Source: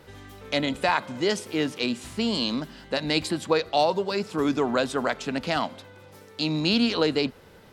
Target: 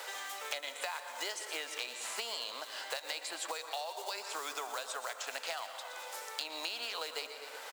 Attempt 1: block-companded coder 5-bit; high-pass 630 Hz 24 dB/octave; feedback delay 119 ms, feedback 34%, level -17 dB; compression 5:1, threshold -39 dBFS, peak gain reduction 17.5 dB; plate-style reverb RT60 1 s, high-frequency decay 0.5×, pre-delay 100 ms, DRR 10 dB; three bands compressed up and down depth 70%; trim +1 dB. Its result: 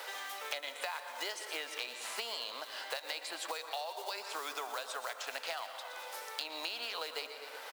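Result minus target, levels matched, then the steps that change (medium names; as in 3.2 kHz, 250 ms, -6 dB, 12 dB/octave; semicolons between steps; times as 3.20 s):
8 kHz band -3.5 dB
add after compression: peaking EQ 7.4 kHz +6.5 dB 0.51 oct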